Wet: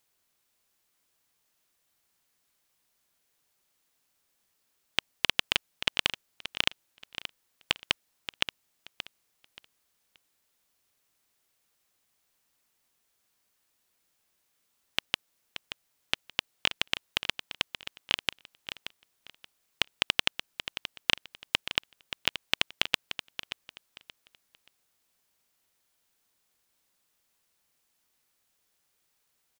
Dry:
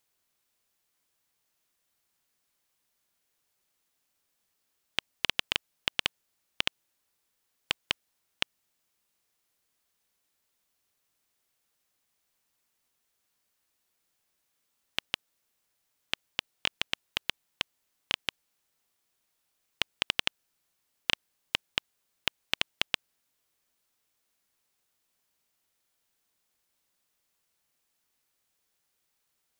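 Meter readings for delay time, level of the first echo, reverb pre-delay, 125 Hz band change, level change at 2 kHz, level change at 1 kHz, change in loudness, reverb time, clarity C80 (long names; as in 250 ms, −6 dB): 578 ms, −11.0 dB, no reverb audible, +3.0 dB, +3.0 dB, +3.0 dB, +2.0 dB, no reverb audible, no reverb audible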